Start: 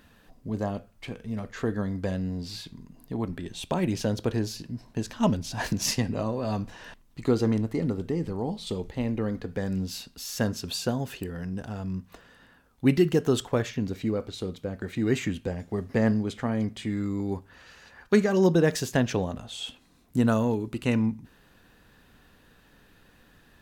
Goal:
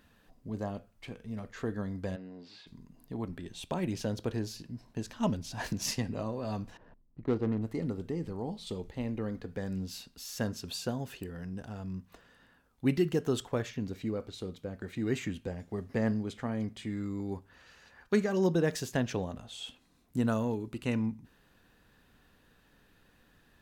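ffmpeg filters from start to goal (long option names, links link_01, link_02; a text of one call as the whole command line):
ffmpeg -i in.wav -filter_complex "[0:a]asplit=3[link_01][link_02][link_03];[link_01]afade=type=out:start_time=2.15:duration=0.02[link_04];[link_02]highpass=330,lowpass=2900,afade=type=in:start_time=2.15:duration=0.02,afade=type=out:start_time=2.66:duration=0.02[link_05];[link_03]afade=type=in:start_time=2.66:duration=0.02[link_06];[link_04][link_05][link_06]amix=inputs=3:normalize=0,asettb=1/sr,asplit=3[link_07][link_08][link_09];[link_07]atrim=end=6.774[link_10];[link_08]atrim=start=6.77:end=7.62,asetpts=PTS-STARTPTS,afade=type=in:duration=0.004:curve=qsin,afade=type=out:start_time=0.846:duration=0.004:curve=qsin,adynamicsmooth=sensitivity=2.5:basefreq=570[link_11];[link_09]atrim=start=7.616[link_12];[link_10][link_11]acrossfade=duration=0.004:curve1=hsin:curve2=qsin[link_13];[link_13][link_12]acrossfade=duration=0.004:curve1=qsin:curve2=hsin,volume=-6.5dB" out.wav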